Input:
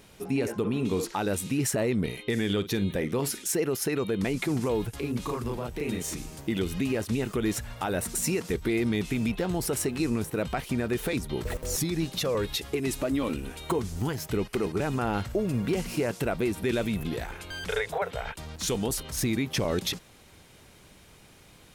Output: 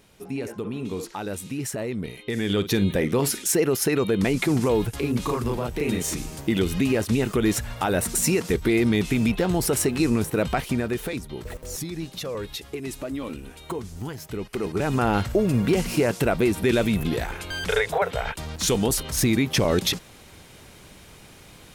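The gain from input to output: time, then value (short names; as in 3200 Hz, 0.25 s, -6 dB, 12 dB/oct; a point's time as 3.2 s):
2.15 s -3 dB
2.67 s +6 dB
10.59 s +6 dB
11.31 s -3.5 dB
14.37 s -3.5 dB
15 s +6.5 dB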